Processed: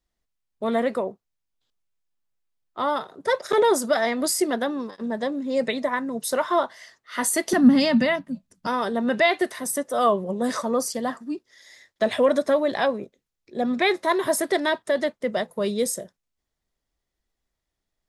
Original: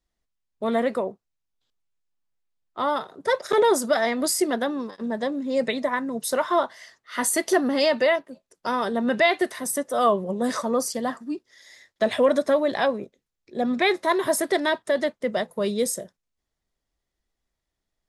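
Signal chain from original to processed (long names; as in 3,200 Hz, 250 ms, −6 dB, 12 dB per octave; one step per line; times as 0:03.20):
0:07.53–0:08.67: low shelf with overshoot 290 Hz +12.5 dB, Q 3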